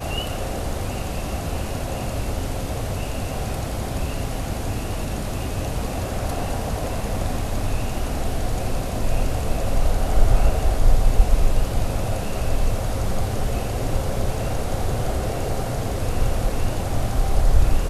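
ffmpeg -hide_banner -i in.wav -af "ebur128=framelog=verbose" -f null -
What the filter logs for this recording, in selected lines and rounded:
Integrated loudness:
  I:         -25.8 LUFS
  Threshold: -35.8 LUFS
Loudness range:
  LRA:         4.6 LU
  Threshold: -45.8 LUFS
  LRA low:   -27.9 LUFS
  LRA high:  -23.3 LUFS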